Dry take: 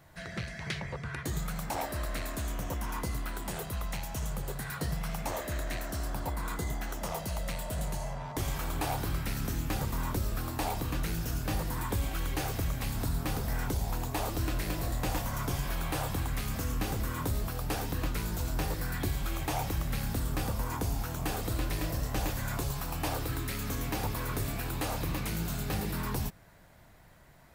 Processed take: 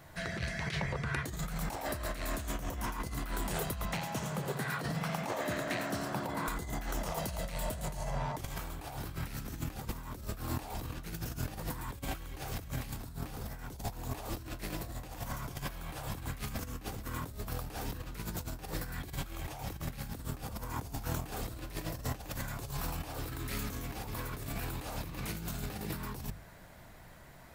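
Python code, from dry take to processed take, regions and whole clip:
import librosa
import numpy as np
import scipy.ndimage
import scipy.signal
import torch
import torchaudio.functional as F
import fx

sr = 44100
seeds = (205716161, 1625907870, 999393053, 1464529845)

y = fx.chain(x, sr, fx.highpass(hz=120.0, slope=24),
    fx.high_shelf(hz=6300.0, db=-10.5),
    fx.echo_single(ms=90, db=-11.5), at=(3.85, 6.48))
y = fx.hum_notches(y, sr, base_hz=50, count=3)
y = fx.over_compress(y, sr, threshold_db=-37.0, ratio=-0.5)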